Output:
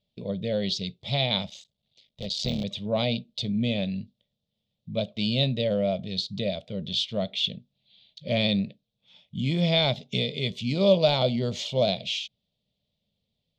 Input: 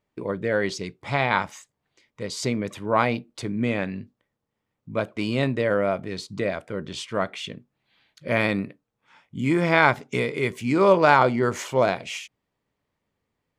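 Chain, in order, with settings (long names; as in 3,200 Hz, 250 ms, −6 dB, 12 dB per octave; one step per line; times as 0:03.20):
0:01.49–0:02.64: sub-harmonics by changed cycles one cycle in 3, muted
de-essing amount 55%
drawn EQ curve 110 Hz 0 dB, 210 Hz +3 dB, 320 Hz −14 dB, 620 Hz 0 dB, 940 Hz −18 dB, 1,600 Hz −23 dB, 3,600 Hz +13 dB, 9,700 Hz −17 dB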